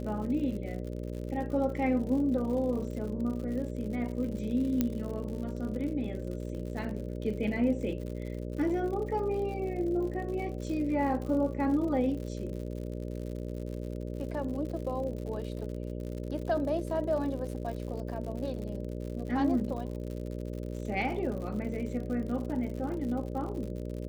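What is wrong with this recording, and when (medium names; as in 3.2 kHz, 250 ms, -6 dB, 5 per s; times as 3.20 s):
buzz 60 Hz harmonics 10 -37 dBFS
crackle 95 per s -39 dBFS
4.81 s: pop -14 dBFS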